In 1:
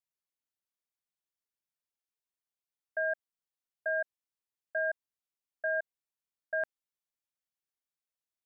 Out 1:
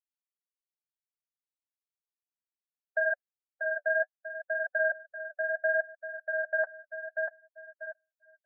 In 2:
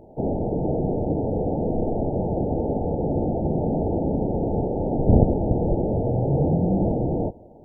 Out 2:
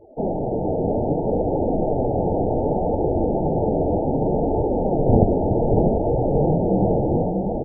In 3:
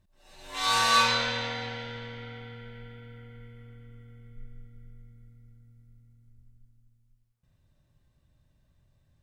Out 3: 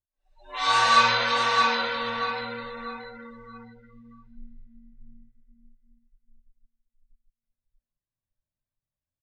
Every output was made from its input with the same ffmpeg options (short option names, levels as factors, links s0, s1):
-af "aecho=1:1:640|1280|1920|2560|3200:0.631|0.246|0.096|0.0374|0.0146,flanger=delay=1.9:depth=9.5:regen=-30:speed=0.65:shape=triangular,equalizer=f=1100:w=0.4:g=6.5,afftdn=nr=28:nf=-41,volume=1.26"